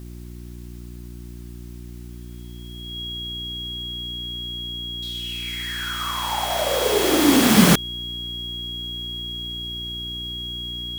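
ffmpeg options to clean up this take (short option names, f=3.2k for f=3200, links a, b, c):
-af "adeclick=t=4,bandreject=f=59.7:t=h:w=4,bandreject=f=119.4:t=h:w=4,bandreject=f=179.1:t=h:w=4,bandreject=f=238.8:t=h:w=4,bandreject=f=298.5:t=h:w=4,bandreject=f=358.2:t=h:w=4,bandreject=f=3.3k:w=30,agate=range=-21dB:threshold=-29dB"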